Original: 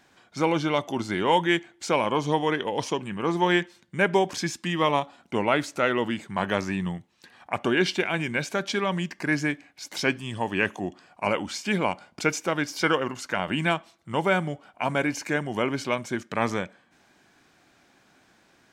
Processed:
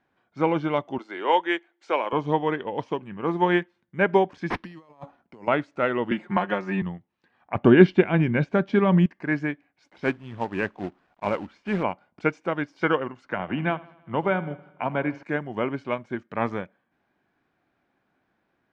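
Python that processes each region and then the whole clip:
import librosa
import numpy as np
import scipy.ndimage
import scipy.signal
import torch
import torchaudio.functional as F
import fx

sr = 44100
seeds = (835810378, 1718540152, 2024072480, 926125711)

y = fx.chain(x, sr, fx.highpass(hz=300.0, slope=24),
    fx.tilt_eq(slope=1.5), at=(0.98, 2.13))
y = fx.chain(y, sr, fx.resample_bad(factor=6, down='none', up='hold'),
    fx.over_compress(threshold_db=-35.0, ratio=-1.0),
    fx.band_widen(depth_pct=100), at=(4.5, 5.48))
y = fx.chain(y, sr, fx.highpass(hz=280.0, slope=6),
    fx.comb(ms=5.6, depth=0.78),
    fx.band_squash(depth_pct=100), at=(6.11, 6.82))
y = fx.chain(y, sr, fx.lowpass(hz=7000.0, slope=12),
    fx.low_shelf(hz=330.0, db=11.5), at=(7.55, 9.06))
y = fx.chain(y, sr, fx.lowpass(hz=2600.0, slope=6),
    fx.quant_companded(bits=4), at=(9.9, 11.83))
y = fx.chain(y, sr, fx.air_absorb(metres=110.0),
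    fx.echo_feedback(ms=79, feedback_pct=59, wet_db=-15),
    fx.band_squash(depth_pct=40), at=(13.26, 15.23))
y = scipy.signal.sosfilt(scipy.signal.bessel(2, 1800.0, 'lowpass', norm='mag', fs=sr, output='sos'), y)
y = fx.upward_expand(y, sr, threshold_db=-45.0, expansion=1.5)
y = y * librosa.db_to_amplitude(5.5)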